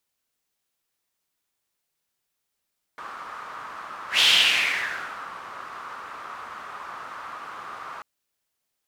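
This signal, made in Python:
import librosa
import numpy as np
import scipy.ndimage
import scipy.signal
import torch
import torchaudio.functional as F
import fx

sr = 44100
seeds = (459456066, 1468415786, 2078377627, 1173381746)

y = fx.whoosh(sr, seeds[0], length_s=5.04, peak_s=1.22, rise_s=0.12, fall_s=1.16, ends_hz=1200.0, peak_hz=3200.0, q=4.2, swell_db=21.0)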